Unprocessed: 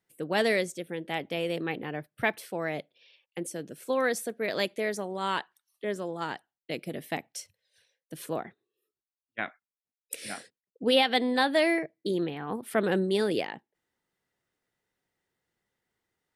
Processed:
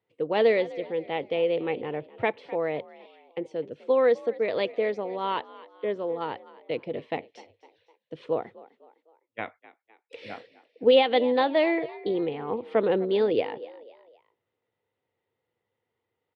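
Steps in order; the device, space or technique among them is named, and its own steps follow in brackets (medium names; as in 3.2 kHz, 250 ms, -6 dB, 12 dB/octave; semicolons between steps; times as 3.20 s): frequency-shifting delay pedal into a guitar cabinet (frequency-shifting echo 254 ms, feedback 44%, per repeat +56 Hz, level -19 dB; cabinet simulation 90–3500 Hz, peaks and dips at 100 Hz +9 dB, 180 Hz -6 dB, 480 Hz +10 dB, 930 Hz +4 dB, 1.6 kHz -8 dB)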